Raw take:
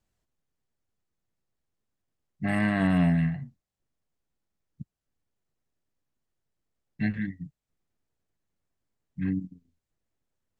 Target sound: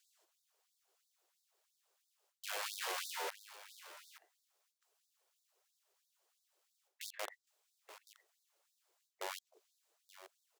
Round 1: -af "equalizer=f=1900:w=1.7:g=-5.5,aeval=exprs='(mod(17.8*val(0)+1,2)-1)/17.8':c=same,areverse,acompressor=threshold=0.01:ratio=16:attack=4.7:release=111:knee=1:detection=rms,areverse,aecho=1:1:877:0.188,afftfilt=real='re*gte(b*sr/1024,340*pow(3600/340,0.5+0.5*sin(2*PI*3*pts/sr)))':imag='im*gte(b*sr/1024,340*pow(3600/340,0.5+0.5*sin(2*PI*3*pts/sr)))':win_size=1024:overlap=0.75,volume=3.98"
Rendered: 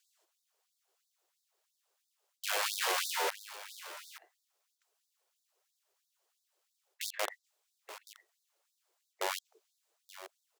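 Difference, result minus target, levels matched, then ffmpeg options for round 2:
compression: peak gain reduction -8.5 dB
-af "equalizer=f=1900:w=1.7:g=-5.5,aeval=exprs='(mod(17.8*val(0)+1,2)-1)/17.8':c=same,areverse,acompressor=threshold=0.00355:ratio=16:attack=4.7:release=111:knee=1:detection=rms,areverse,aecho=1:1:877:0.188,afftfilt=real='re*gte(b*sr/1024,340*pow(3600/340,0.5+0.5*sin(2*PI*3*pts/sr)))':imag='im*gte(b*sr/1024,340*pow(3600/340,0.5+0.5*sin(2*PI*3*pts/sr)))':win_size=1024:overlap=0.75,volume=3.98"

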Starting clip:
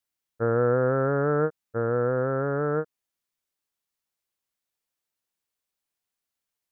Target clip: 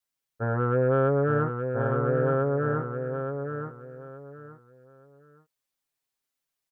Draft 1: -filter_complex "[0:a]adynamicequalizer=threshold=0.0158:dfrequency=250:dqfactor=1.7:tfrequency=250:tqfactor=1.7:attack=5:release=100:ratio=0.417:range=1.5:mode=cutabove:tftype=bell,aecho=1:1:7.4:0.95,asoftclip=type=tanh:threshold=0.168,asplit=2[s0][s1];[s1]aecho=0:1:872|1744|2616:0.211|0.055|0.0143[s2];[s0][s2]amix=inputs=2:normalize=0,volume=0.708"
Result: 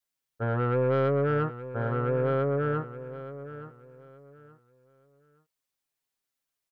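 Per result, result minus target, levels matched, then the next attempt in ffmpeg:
saturation: distortion +14 dB; echo-to-direct -7 dB
-filter_complex "[0:a]adynamicequalizer=threshold=0.0158:dfrequency=250:dqfactor=1.7:tfrequency=250:tqfactor=1.7:attack=5:release=100:ratio=0.417:range=1.5:mode=cutabove:tftype=bell,aecho=1:1:7.4:0.95,asoftclip=type=tanh:threshold=0.473,asplit=2[s0][s1];[s1]aecho=0:1:872|1744|2616:0.211|0.055|0.0143[s2];[s0][s2]amix=inputs=2:normalize=0,volume=0.708"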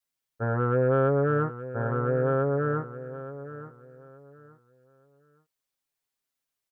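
echo-to-direct -7 dB
-filter_complex "[0:a]adynamicequalizer=threshold=0.0158:dfrequency=250:dqfactor=1.7:tfrequency=250:tqfactor=1.7:attack=5:release=100:ratio=0.417:range=1.5:mode=cutabove:tftype=bell,aecho=1:1:7.4:0.95,asoftclip=type=tanh:threshold=0.473,asplit=2[s0][s1];[s1]aecho=0:1:872|1744|2616:0.473|0.123|0.032[s2];[s0][s2]amix=inputs=2:normalize=0,volume=0.708"

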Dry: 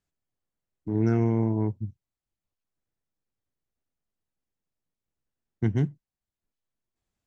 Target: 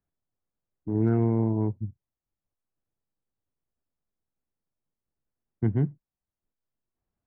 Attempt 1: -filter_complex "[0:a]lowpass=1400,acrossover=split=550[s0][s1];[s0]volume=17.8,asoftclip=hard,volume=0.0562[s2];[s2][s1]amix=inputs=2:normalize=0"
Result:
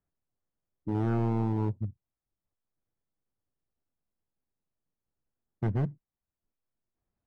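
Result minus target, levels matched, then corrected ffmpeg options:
overload inside the chain: distortion +36 dB
-filter_complex "[0:a]lowpass=1400,acrossover=split=550[s0][s1];[s0]volume=5.62,asoftclip=hard,volume=0.178[s2];[s2][s1]amix=inputs=2:normalize=0"

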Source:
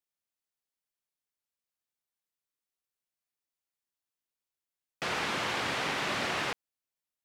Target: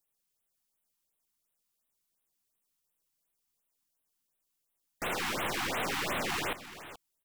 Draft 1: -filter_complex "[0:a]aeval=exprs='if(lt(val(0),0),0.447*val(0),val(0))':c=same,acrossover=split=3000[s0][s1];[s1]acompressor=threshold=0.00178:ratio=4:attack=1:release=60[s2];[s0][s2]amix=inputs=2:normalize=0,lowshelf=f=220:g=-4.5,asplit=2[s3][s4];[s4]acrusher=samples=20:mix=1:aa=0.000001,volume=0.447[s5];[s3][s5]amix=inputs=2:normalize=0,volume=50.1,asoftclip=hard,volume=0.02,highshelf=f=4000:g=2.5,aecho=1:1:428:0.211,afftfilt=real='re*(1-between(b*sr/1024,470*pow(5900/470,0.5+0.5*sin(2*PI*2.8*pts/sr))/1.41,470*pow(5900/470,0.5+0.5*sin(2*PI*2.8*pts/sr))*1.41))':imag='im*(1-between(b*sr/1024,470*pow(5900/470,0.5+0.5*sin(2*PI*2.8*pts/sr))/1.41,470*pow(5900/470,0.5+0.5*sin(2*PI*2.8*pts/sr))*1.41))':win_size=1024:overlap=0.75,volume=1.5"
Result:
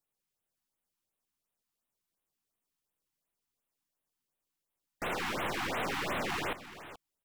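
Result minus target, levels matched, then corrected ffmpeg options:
8 kHz band -4.5 dB
-filter_complex "[0:a]aeval=exprs='if(lt(val(0),0),0.447*val(0),val(0))':c=same,acrossover=split=3000[s0][s1];[s1]acompressor=threshold=0.00178:ratio=4:attack=1:release=60[s2];[s0][s2]amix=inputs=2:normalize=0,lowshelf=f=220:g=-4.5,asplit=2[s3][s4];[s4]acrusher=samples=20:mix=1:aa=0.000001,volume=0.447[s5];[s3][s5]amix=inputs=2:normalize=0,volume=50.1,asoftclip=hard,volume=0.02,highshelf=f=4000:g=10.5,aecho=1:1:428:0.211,afftfilt=real='re*(1-between(b*sr/1024,470*pow(5900/470,0.5+0.5*sin(2*PI*2.8*pts/sr))/1.41,470*pow(5900/470,0.5+0.5*sin(2*PI*2.8*pts/sr))*1.41))':imag='im*(1-between(b*sr/1024,470*pow(5900/470,0.5+0.5*sin(2*PI*2.8*pts/sr))/1.41,470*pow(5900/470,0.5+0.5*sin(2*PI*2.8*pts/sr))*1.41))':win_size=1024:overlap=0.75,volume=1.5"

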